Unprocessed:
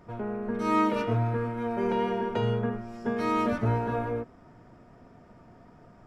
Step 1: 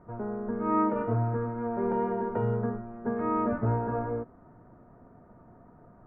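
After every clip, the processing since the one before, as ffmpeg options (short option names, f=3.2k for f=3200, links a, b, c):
-af "lowpass=f=1.5k:w=0.5412,lowpass=f=1.5k:w=1.3066,volume=-1dB"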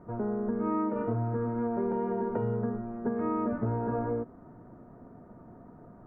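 -af "equalizer=f=270:w=0.62:g=5.5,acompressor=threshold=-27dB:ratio=5"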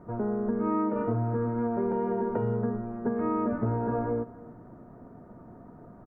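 -af "aecho=1:1:293:0.0891,volume=2dB"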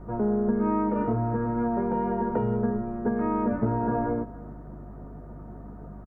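-filter_complex "[0:a]aeval=exprs='val(0)+0.00631*(sin(2*PI*50*n/s)+sin(2*PI*2*50*n/s)/2+sin(2*PI*3*50*n/s)/3+sin(2*PI*4*50*n/s)/4+sin(2*PI*5*50*n/s)/5)':c=same,asplit=2[a][b];[b]adelay=14,volume=-7dB[c];[a][c]amix=inputs=2:normalize=0,volume=2.5dB"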